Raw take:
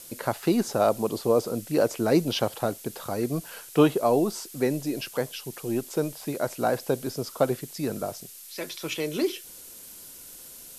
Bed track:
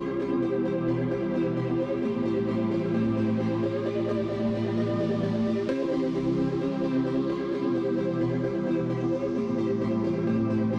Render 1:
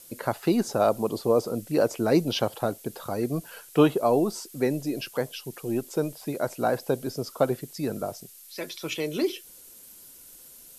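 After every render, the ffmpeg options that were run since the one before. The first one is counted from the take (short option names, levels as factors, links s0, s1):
-af "afftdn=nr=6:nf=-45"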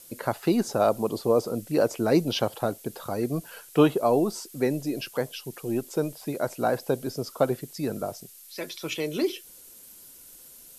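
-af anull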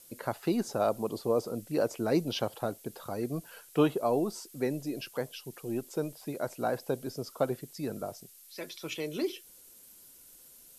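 -af "volume=0.501"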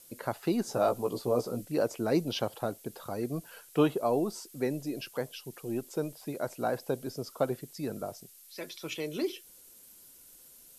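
-filter_complex "[0:a]asettb=1/sr,asplit=3[s0][s1][s2];[s0]atrim=end=0.664[s3];[s1]atrim=start=0.66:end=1.65,asetpts=PTS-STARTPTS,afade=t=in:d=0.004:c=qsin,afade=t=out:st=0.986:d=0.004:c=qsin,asplit=2[s4][s5];[s5]adelay=16,volume=0.596[s6];[s4][s6]amix=inputs=2:normalize=0,atrim=end_sample=43659[s7];[s2]atrim=start=1.646[s8];[s3][s7]acrossfade=d=0.004:c1=hsin:c2=qsin[s9];[s9][s8]acrossfade=d=0.004:c1=qsin:c2=hsin"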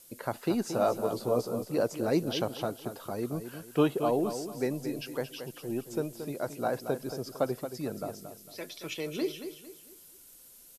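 -af "aecho=1:1:226|452|678|904:0.335|0.117|0.041|0.0144"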